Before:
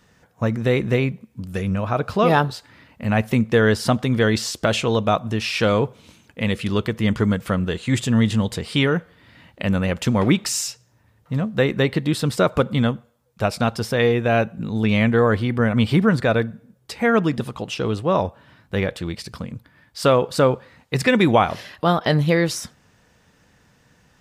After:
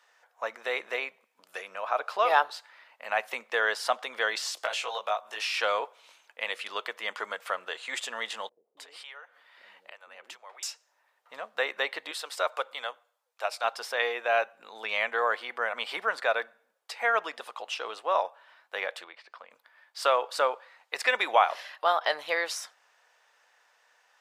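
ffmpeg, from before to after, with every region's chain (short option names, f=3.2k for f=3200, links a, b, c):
-filter_complex "[0:a]asettb=1/sr,asplit=3[a][b][c];[a]atrim=end=4.554[d];[b]atrim=start=4.55:end=5.58,asetpts=PTS-STARTPTS,afade=t=in:d=0.004:c=qsin,afade=t=out:st=1.026:d=0.004:c=qsin,highshelf=f=5.6k:g=4.5,acrossover=split=120|380[e][f][g];[e]acompressor=threshold=-41dB:ratio=4[h];[f]acompressor=threshold=-37dB:ratio=4[i];[g]acompressor=threshold=-25dB:ratio=4[j];[h][i][j]amix=inputs=3:normalize=0,asplit=2[k][l];[l]adelay=19,volume=-2.5dB[m];[k][m]amix=inputs=2:normalize=0,atrim=end_sample=45423[n];[c]atrim=start=5.576[o];[d][n]acrossfade=d=0.004:c1=hsin:c2=qsin[p];[p][o]acrossfade=d=0.004:c1=qsin:c2=hsin,asettb=1/sr,asplit=3[q][r][s];[q]atrim=end=8.494[t];[r]atrim=start=8.49:end=10.63,asetpts=PTS-STARTPTS,afade=t=in:d=0.004:c=qsin,afade=t=out:st=2.136:d=0.004:c=qsin,acompressor=threshold=-38dB:ratio=3:attack=3.2:release=140:knee=1:detection=peak,acrossover=split=420[u][v];[v]adelay=280[w];[u][w]amix=inputs=2:normalize=0,atrim=end_sample=94374[x];[s]atrim=start=10.626[y];[t][x]acrossfade=d=0.004:c1=hsin:c2=qsin[z];[z][y]acrossfade=d=0.004:c1=qsin:c2=hsin,asettb=1/sr,asplit=3[aa][ab][ac];[aa]atrim=end=12.114[ad];[ab]atrim=start=12.11:end=13.64,asetpts=PTS-STARTPTS,afade=t=in:d=0.004:c=qsin,afade=t=out:st=1.526:d=0.004:c=qsin,highpass=460,equalizer=f=1.2k:t=o:w=2.6:g=-3.5[ae];[ac]atrim=start=13.636[af];[ad][ae]acrossfade=d=0.004:c1=hsin:c2=qsin[ag];[ag][af]acrossfade=d=0.004:c1=qsin:c2=hsin,asettb=1/sr,asplit=3[ah][ai][aj];[ah]atrim=end=19.044[ak];[ai]atrim=start=19.04:end=19.51,asetpts=PTS-STARTPTS,afade=t=in:d=0.004:c=qsin,afade=t=out:st=0.466:d=0.004:c=qsin,aemphasis=mode=reproduction:type=riaa,acrossover=split=3400[al][am];[am]acompressor=threshold=-59dB:ratio=4:attack=1:release=60[an];[al][an]amix=inputs=2:normalize=0,highpass=f=1k:p=1[ao];[aj]atrim=start=19.506[ap];[ak][ao]acrossfade=d=0.004:c1=hsin:c2=qsin[aq];[aq][ap]acrossfade=d=0.004:c1=qsin:c2=hsin,highpass=f=650:w=0.5412,highpass=f=650:w=1.3066,highshelf=f=4.8k:g=-7,volume=-2.5dB"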